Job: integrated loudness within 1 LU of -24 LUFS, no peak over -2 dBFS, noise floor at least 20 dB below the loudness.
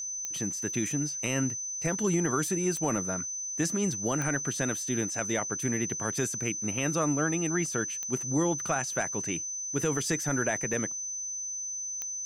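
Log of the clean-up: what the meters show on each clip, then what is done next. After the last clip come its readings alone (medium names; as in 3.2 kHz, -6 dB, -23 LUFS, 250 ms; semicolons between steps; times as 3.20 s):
clicks found 5; steady tone 6.1 kHz; tone level -33 dBFS; loudness -29.5 LUFS; peak level -15.5 dBFS; loudness target -24.0 LUFS
-> de-click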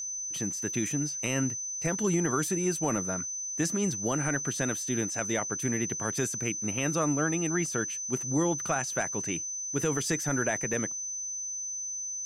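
clicks found 0; steady tone 6.1 kHz; tone level -33 dBFS
-> band-stop 6.1 kHz, Q 30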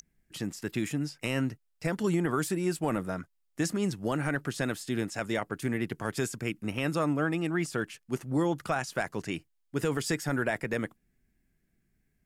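steady tone not found; loudness -32.0 LUFS; peak level -17.0 dBFS; loudness target -24.0 LUFS
-> trim +8 dB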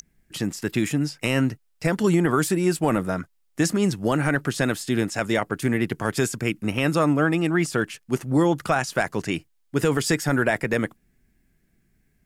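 loudness -24.0 LUFS; peak level -9.0 dBFS; noise floor -66 dBFS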